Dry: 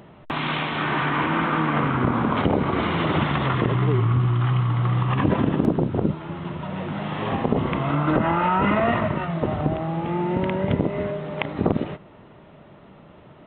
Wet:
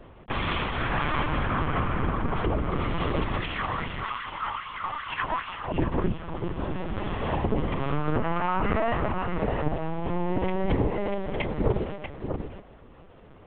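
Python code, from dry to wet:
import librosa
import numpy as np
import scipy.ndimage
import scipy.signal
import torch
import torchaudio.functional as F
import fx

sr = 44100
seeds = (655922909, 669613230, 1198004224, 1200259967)

y = fx.highpass(x, sr, hz=120.0, slope=6)
y = fx.low_shelf(y, sr, hz=200.0, db=5.5)
y = fx.hum_notches(y, sr, base_hz=60, count=4)
y = fx.rider(y, sr, range_db=4, speed_s=2.0)
y = fx.filter_lfo_highpass(y, sr, shape='sine', hz=2.5, low_hz=800.0, high_hz=2800.0, q=2.6, at=(3.4, 5.73))
y = y + 10.0 ** (-7.0 / 20.0) * np.pad(y, (int(639 * sr / 1000.0), 0))[:len(y)]
y = fx.lpc_vocoder(y, sr, seeds[0], excitation='pitch_kept', order=10)
y = y * librosa.db_to_amplitude(-4.5)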